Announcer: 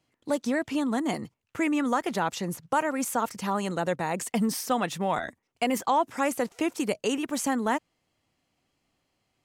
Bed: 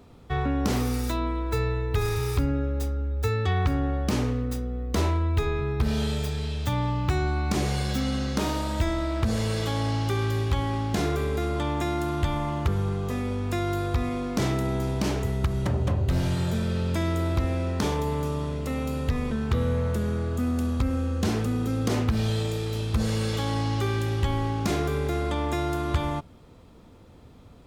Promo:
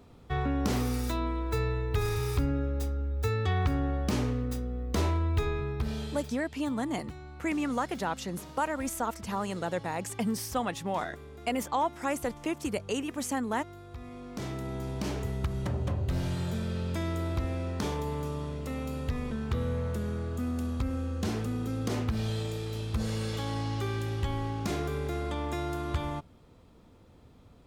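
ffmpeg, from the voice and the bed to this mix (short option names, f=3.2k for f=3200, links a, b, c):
-filter_complex "[0:a]adelay=5850,volume=-4.5dB[a];[1:a]volume=10.5dB,afade=t=out:st=5.43:d=0.99:silence=0.149624,afade=t=in:st=13.87:d=1.36:silence=0.199526[b];[a][b]amix=inputs=2:normalize=0"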